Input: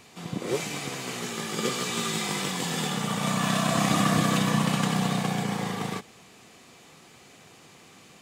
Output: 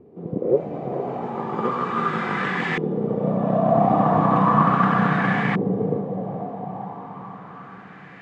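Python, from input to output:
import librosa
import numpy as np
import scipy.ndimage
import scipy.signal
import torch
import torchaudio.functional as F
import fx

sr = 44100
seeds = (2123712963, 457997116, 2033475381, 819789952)

y = fx.echo_diffused(x, sr, ms=474, feedback_pct=58, wet_db=-6.5)
y = fx.filter_lfo_lowpass(y, sr, shape='saw_up', hz=0.36, low_hz=390.0, high_hz=2000.0, q=3.3)
y = y * librosa.db_to_amplitude(3.0)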